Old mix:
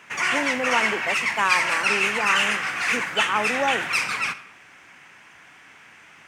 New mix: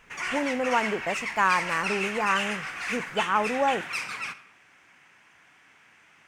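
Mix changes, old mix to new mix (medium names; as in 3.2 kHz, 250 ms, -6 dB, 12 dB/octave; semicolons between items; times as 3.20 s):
speech: remove steep high-pass 200 Hz 48 dB/octave; background -8.5 dB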